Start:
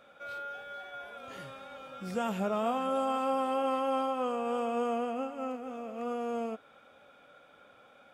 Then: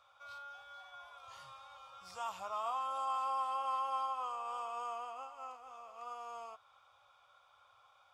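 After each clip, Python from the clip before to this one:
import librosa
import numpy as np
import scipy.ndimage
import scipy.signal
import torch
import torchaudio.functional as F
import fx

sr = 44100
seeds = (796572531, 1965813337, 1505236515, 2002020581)

y = fx.curve_eq(x, sr, hz=(110.0, 220.0, 380.0, 1100.0, 1600.0, 5100.0, 12000.0), db=(0, -29, -21, 11, -7, 8, -2))
y = F.gain(torch.from_numpy(y), -8.0).numpy()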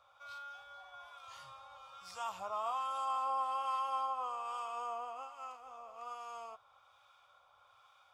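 y = fx.harmonic_tremolo(x, sr, hz=1.2, depth_pct=50, crossover_hz=1100.0)
y = F.gain(torch.from_numpy(y), 3.0).numpy()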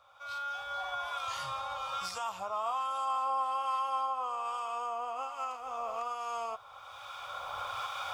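y = fx.recorder_agc(x, sr, target_db=-31.5, rise_db_per_s=16.0, max_gain_db=30)
y = F.gain(torch.from_numpy(y), 3.5).numpy()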